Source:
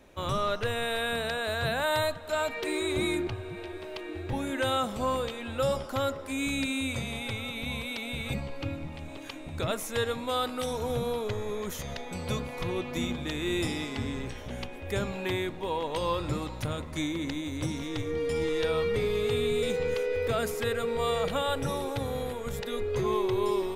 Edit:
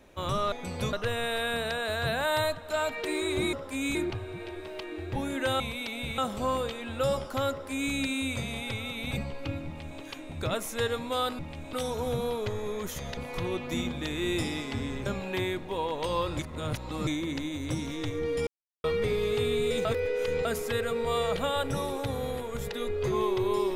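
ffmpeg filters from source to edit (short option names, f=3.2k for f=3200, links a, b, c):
-filter_complex "[0:a]asplit=18[a][b][c][d][e][f][g][h][i][j][k][l][m][n][o][p][q][r];[a]atrim=end=0.522[s];[b]atrim=start=11.998:end=12.412[t];[c]atrim=start=0.518:end=3.122[u];[d]atrim=start=6.098:end=6.522[v];[e]atrim=start=3.118:end=4.772[w];[f]atrim=start=7.698:end=8.282[x];[g]atrim=start=4.768:end=7.702[y];[h]atrim=start=8.278:end=10.562[z];[i]atrim=start=8.828:end=9.172[aa];[j]atrim=start=10.558:end=12.002[ab];[k]atrim=start=12.408:end=14.302[ac];[l]atrim=start=14.978:end=16.312[ad];[m]atrim=start=16.308:end=16.992,asetpts=PTS-STARTPTS,areverse[ae];[n]atrim=start=16.988:end=18.39,asetpts=PTS-STARTPTS,afade=t=out:st=1.398:d=0.004:c=hsin[af];[o]atrim=start=18.39:end=18.76,asetpts=PTS-STARTPTS,volume=0[ag];[p]atrim=start=18.76:end=19.772,asetpts=PTS-STARTPTS,afade=t=in:d=0.004:c=hsin[ah];[q]atrim=start=19.768:end=20.372,asetpts=PTS-STARTPTS,areverse[ai];[r]atrim=start=20.368[aj];[s][t]acrossfade=d=0.004:c1=hsin:c2=hsin[ak];[ak][u]acrossfade=d=0.004:c1=hsin:c2=hsin[al];[al][v]acrossfade=d=0.004:c1=hsin:c2=hsin[am];[am][w]acrossfade=d=0.004:c1=hsin:c2=hsin[an];[an][x]acrossfade=d=0.004:c1=hsin:c2=hsin[ao];[ao][y]acrossfade=d=0.004:c1=hsin:c2=hsin[ap];[ap][z]acrossfade=d=0.004:c1=hsin:c2=hsin[aq];[aq][aa]acrossfade=d=0.004:c1=hsin:c2=hsin[ar];[ar][ab]acrossfade=d=0.004:c1=hsin:c2=hsin[as];[as][ac]acrossfade=d=0.004:c1=hsin:c2=hsin[at];[at][ad]acrossfade=d=0.004:c1=hsin:c2=hsin[au];[au][ae]acrossfade=d=0.004:c1=hsin:c2=hsin[av];[af][ag][ah]concat=n=3:v=0:a=1[aw];[av][aw]acrossfade=d=0.004:c1=hsin:c2=hsin[ax];[ax][ai]acrossfade=d=0.004:c1=hsin:c2=hsin[ay];[ay][aj]acrossfade=d=0.004:c1=hsin:c2=hsin"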